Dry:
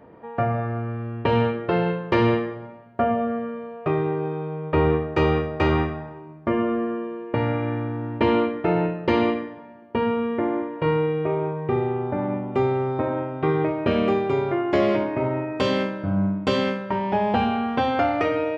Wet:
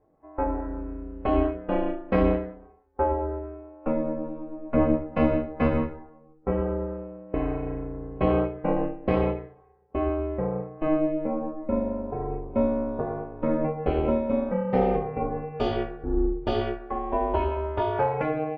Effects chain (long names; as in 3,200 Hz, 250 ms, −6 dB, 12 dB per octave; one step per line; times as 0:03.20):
ring modulation 160 Hz
every bin expanded away from the loudest bin 1.5 to 1